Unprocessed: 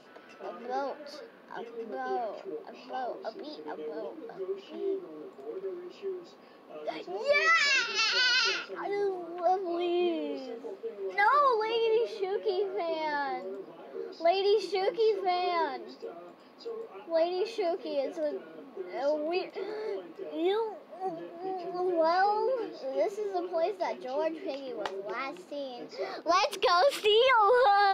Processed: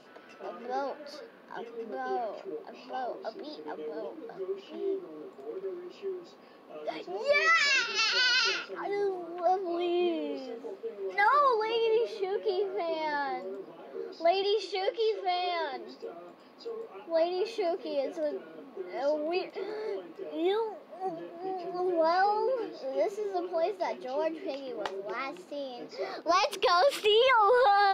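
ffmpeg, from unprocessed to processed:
-filter_complex "[0:a]asettb=1/sr,asplit=3[s0][s1][s2];[s0]atrim=end=14.434[s3];[s1]atrim=start=14.43:end=15.73,asetpts=PTS-STARTPTS,afade=t=in:d=0.004:c=qsin,afade=t=out:st=1.296:d=0.004:c=qsin,highpass=450,equalizer=f=560:t=q:w=4:g=3,equalizer=f=1000:t=q:w=4:g=-7,equalizer=f=3400:t=q:w=4:g=5,lowpass=f=8600:w=0.5412,lowpass=f=8600:w=1.3066[s4];[s2]atrim=start=15.726[s5];[s3][s4]acrossfade=d=0.004:c1=hsin:c2=qsin[s6];[s6][s5]acrossfade=d=0.004:c1=qsin:c2=hsin"

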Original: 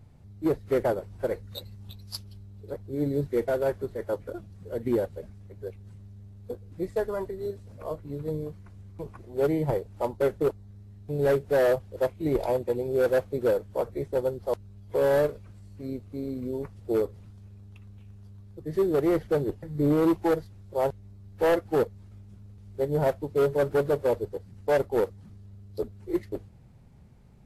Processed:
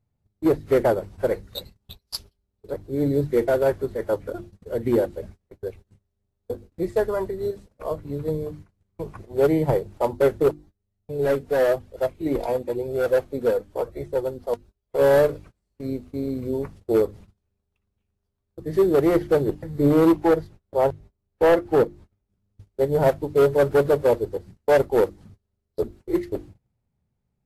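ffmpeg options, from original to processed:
-filter_complex "[0:a]asplit=3[s0][s1][s2];[s0]afade=t=out:st=10.53:d=0.02[s3];[s1]flanger=delay=1.4:depth=2.9:regen=51:speed=1:shape=sinusoidal,afade=t=in:st=10.53:d=0.02,afade=t=out:st=14.98:d=0.02[s4];[s2]afade=t=in:st=14.98:d=0.02[s5];[s3][s4][s5]amix=inputs=3:normalize=0,asettb=1/sr,asplit=3[s6][s7][s8];[s6]atrim=end=20.124[s9];[s7]atrim=start=20.12:end=22.32,asetpts=PTS-STARTPTS,afade=t=in:d=0.004:c=qsin,afade=t=out:st=2.196:d=0.004:c=qsin,highshelf=f=3400:g=-6[s10];[s8]atrim=start=22.316[s11];[s9][s10]acrossfade=d=0.004:c1=hsin:c2=qsin[s12];[s12][s11]acrossfade=d=0.004:c1=qsin:c2=hsin,bandreject=f=50:t=h:w=6,bandreject=f=100:t=h:w=6,bandreject=f=150:t=h:w=6,bandreject=f=200:t=h:w=6,bandreject=f=250:t=h:w=6,bandreject=f=300:t=h:w=6,bandreject=f=350:t=h:w=6,agate=range=0.0501:threshold=0.00447:ratio=16:detection=peak,volume=2"

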